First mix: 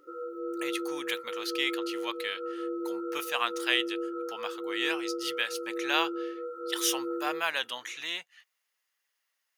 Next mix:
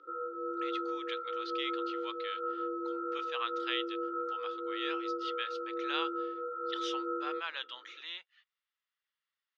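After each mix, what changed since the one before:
speech -11.0 dB; master: add speaker cabinet 410–4700 Hz, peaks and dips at 690 Hz -6 dB, 1300 Hz +6 dB, 3500 Hz +6 dB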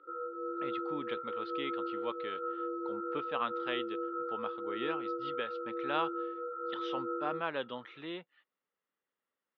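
speech: remove HPF 1500 Hz 12 dB/oct; master: add air absorption 300 m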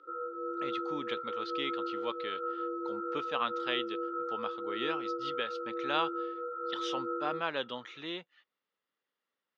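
master: remove air absorption 300 m

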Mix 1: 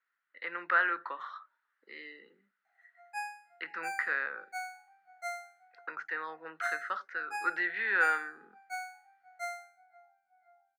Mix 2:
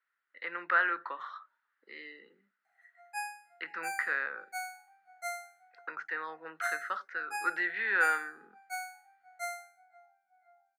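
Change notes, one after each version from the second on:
background: add bell 14000 Hz +11 dB 1.2 oct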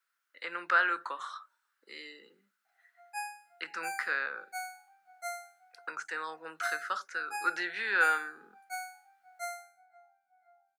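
speech: remove air absorption 320 m; master: add bell 1900 Hz -8.5 dB 0.24 oct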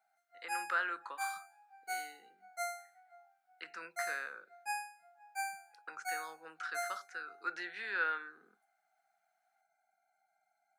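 speech -8.0 dB; background: entry -2.65 s

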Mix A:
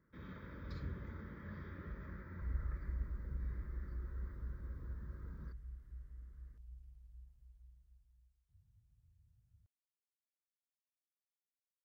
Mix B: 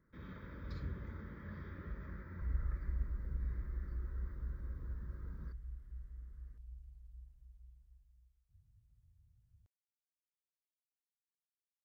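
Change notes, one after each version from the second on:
master: remove HPF 50 Hz 6 dB/oct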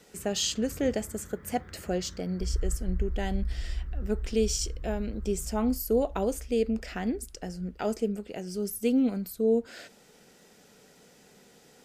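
speech: unmuted; second sound: remove HPF 110 Hz 6 dB/oct

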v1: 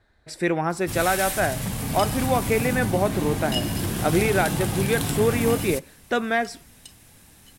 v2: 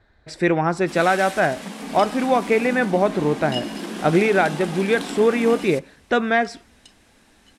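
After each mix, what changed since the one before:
speech +4.5 dB; first sound: add brick-wall FIR high-pass 180 Hz; master: add air absorption 75 m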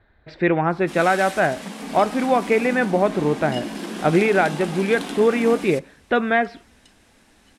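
speech: add LPF 3600 Hz 24 dB/oct; second sound -6.0 dB

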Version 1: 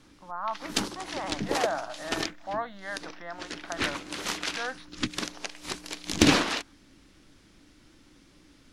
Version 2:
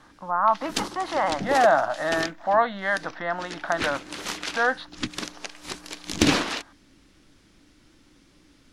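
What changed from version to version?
speech +12.0 dB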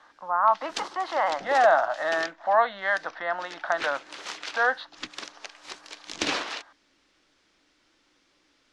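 background -4.0 dB; master: add three-band isolator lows -17 dB, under 400 Hz, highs -22 dB, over 7900 Hz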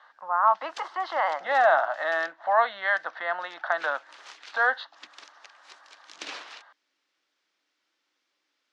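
background -11.0 dB; master: add weighting filter A

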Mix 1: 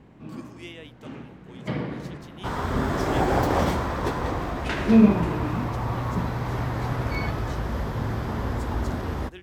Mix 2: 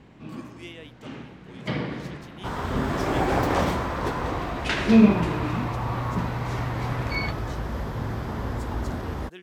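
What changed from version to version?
first sound: add bell 4300 Hz +7 dB 2.6 oct; reverb: off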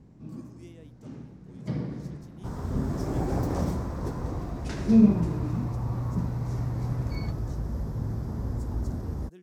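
master: add EQ curve 160 Hz 0 dB, 3100 Hz -21 dB, 5500 Hz -6 dB

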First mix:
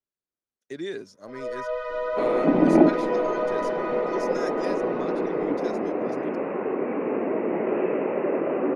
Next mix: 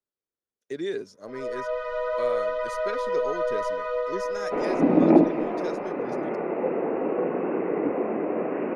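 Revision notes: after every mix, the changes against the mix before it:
speech: add bell 450 Hz +6 dB 0.43 oct; second sound: entry +2.35 s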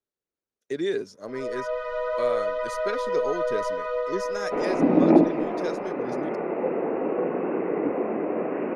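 speech +3.5 dB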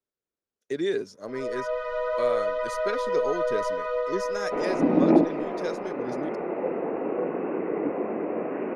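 second sound: send off

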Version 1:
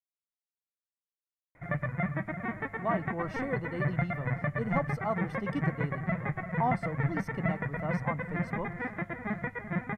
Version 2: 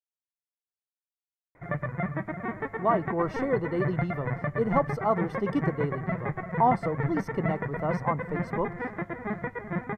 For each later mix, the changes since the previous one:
speech +4.0 dB; master: add fifteen-band EQ 400 Hz +8 dB, 1000 Hz +4 dB, 2500 Hz -3 dB, 10000 Hz -4 dB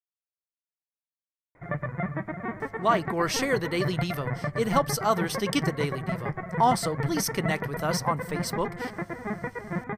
speech: remove polynomial smoothing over 65 samples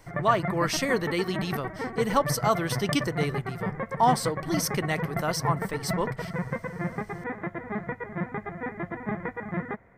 speech: entry -2.60 s; background: entry -1.55 s

